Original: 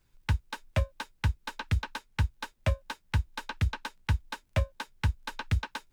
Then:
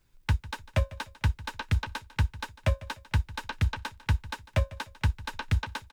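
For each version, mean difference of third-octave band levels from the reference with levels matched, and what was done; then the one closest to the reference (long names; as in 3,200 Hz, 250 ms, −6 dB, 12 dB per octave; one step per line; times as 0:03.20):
2.0 dB: repeating echo 149 ms, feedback 35%, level −18.5 dB
level +1.5 dB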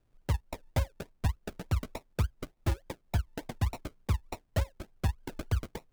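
7.5 dB: sample-and-hold swept by an LFO 39×, swing 60% 3.4 Hz
level −2 dB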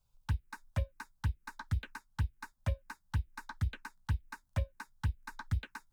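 3.5 dB: phaser swept by the level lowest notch 320 Hz, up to 1,300 Hz, full sweep at −22.5 dBFS
level −5.5 dB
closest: first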